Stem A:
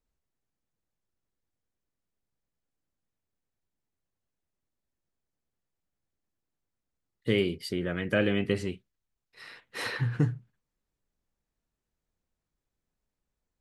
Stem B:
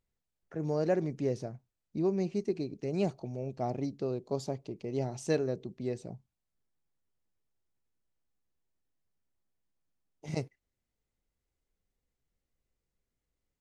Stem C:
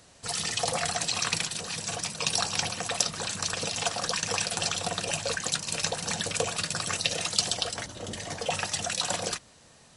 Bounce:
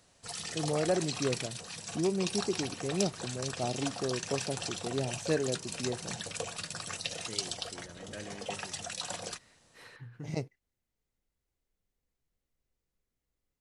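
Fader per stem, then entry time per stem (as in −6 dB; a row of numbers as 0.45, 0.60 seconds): −19.0, −0.5, −9.0 decibels; 0.00, 0.00, 0.00 seconds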